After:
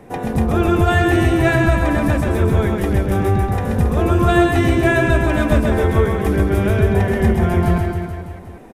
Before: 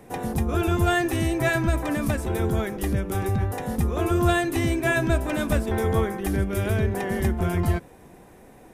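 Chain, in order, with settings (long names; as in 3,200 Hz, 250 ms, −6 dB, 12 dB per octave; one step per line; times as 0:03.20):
high-shelf EQ 4,600 Hz −10 dB
on a send: reverse bouncing-ball delay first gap 130 ms, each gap 1.1×, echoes 5
on the sum: level +6 dB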